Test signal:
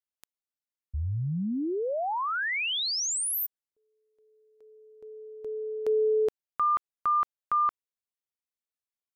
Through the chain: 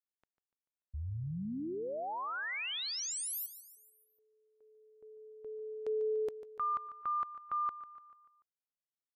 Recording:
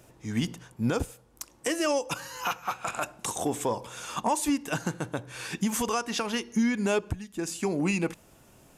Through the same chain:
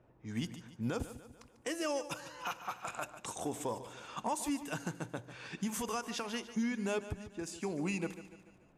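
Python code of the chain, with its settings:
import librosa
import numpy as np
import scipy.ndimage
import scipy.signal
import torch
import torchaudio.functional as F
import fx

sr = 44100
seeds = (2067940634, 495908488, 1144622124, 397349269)

p1 = fx.env_lowpass(x, sr, base_hz=1500.0, full_db=-27.5)
p2 = p1 + fx.echo_feedback(p1, sr, ms=146, feedback_pct=51, wet_db=-13.5, dry=0)
y = p2 * 10.0 ** (-9.0 / 20.0)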